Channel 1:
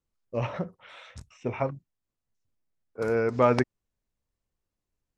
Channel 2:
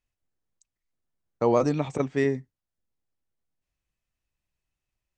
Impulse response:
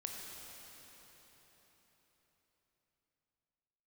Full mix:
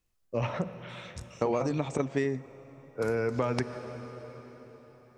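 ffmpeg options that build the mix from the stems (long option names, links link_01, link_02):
-filter_complex "[0:a]acrossover=split=170|3000[link_01][link_02][link_03];[link_02]acompressor=threshold=-26dB:ratio=2.5[link_04];[link_01][link_04][link_03]amix=inputs=3:normalize=0,volume=-1dB,asplit=2[link_05][link_06];[link_06]volume=-6dB[link_07];[1:a]volume=0.5dB,asplit=2[link_08][link_09];[link_09]volume=-21dB[link_10];[2:a]atrim=start_sample=2205[link_11];[link_07][link_10]amix=inputs=2:normalize=0[link_12];[link_12][link_11]afir=irnorm=-1:irlink=0[link_13];[link_05][link_08][link_13]amix=inputs=3:normalize=0,highshelf=frequency=6200:gain=5,acompressor=threshold=-24dB:ratio=10"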